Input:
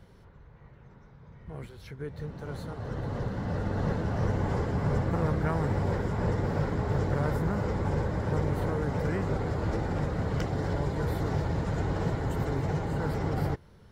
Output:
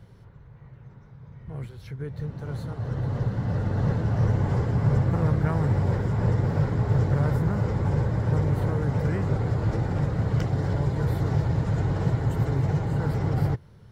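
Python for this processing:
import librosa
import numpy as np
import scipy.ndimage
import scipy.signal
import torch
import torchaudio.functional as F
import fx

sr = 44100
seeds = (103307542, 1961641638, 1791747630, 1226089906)

y = fx.peak_eq(x, sr, hz=120.0, db=10.0, octaves=0.78)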